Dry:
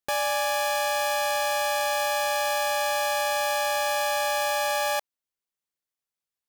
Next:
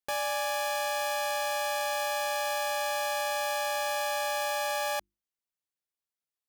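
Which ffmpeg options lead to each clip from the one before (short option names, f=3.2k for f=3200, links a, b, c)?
-af "bandreject=f=50:t=h:w=6,bandreject=f=100:t=h:w=6,bandreject=f=150:t=h:w=6,bandreject=f=200:t=h:w=6,bandreject=f=250:t=h:w=6,bandreject=f=300:t=h:w=6,bandreject=f=350:t=h:w=6,volume=-5dB"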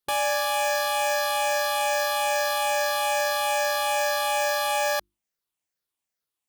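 -af "afftfilt=real='re*pow(10,6/40*sin(2*PI*(0.6*log(max(b,1)*sr/1024/100)/log(2)-(-2.4)*(pts-256)/sr)))':imag='im*pow(10,6/40*sin(2*PI*(0.6*log(max(b,1)*sr/1024/100)/log(2)-(-2.4)*(pts-256)/sr)))':win_size=1024:overlap=0.75,volume=5.5dB"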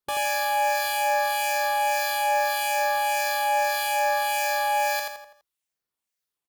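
-filter_complex "[0:a]aecho=1:1:83|166|249|332|415:0.668|0.281|0.118|0.0495|0.0208,acrossover=split=1800[a][b];[a]aeval=exprs='val(0)*(1-0.5/2+0.5/2*cos(2*PI*1.7*n/s))':c=same[c];[b]aeval=exprs='val(0)*(1-0.5/2-0.5/2*cos(2*PI*1.7*n/s))':c=same[d];[c][d]amix=inputs=2:normalize=0"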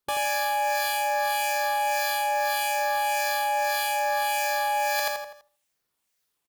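-filter_complex "[0:a]asplit=2[a][b];[b]adelay=76,lowpass=f=1.8k:p=1,volume=-19.5dB,asplit=2[c][d];[d]adelay=76,lowpass=f=1.8k:p=1,volume=0.43,asplit=2[e][f];[f]adelay=76,lowpass=f=1.8k:p=1,volume=0.43[g];[a][c][e][g]amix=inputs=4:normalize=0,areverse,acompressor=threshold=-32dB:ratio=6,areverse,volume=8.5dB"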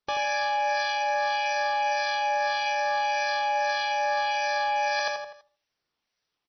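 -ar 24000 -c:a libmp3lame -b:a 24k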